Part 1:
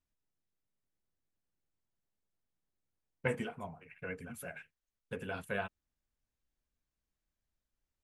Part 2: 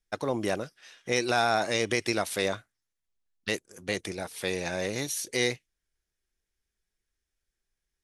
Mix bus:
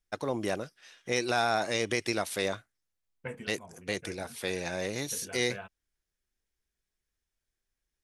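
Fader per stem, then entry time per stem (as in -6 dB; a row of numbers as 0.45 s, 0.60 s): -6.0 dB, -2.5 dB; 0.00 s, 0.00 s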